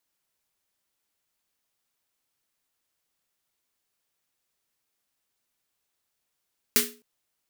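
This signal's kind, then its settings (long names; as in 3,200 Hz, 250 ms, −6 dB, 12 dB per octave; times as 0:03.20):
synth snare length 0.26 s, tones 240 Hz, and 420 Hz, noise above 1,400 Hz, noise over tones 11 dB, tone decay 0.40 s, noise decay 0.28 s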